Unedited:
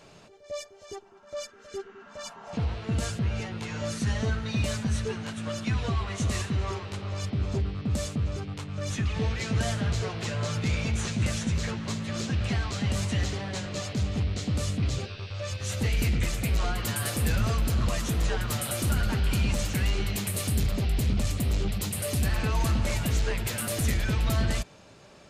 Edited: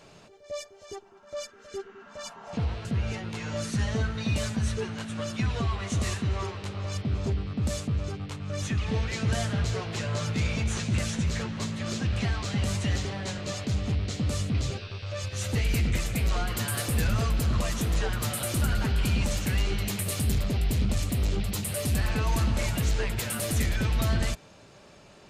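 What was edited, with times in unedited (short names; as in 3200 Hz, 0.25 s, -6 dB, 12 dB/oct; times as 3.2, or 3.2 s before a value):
2.85–3.13 cut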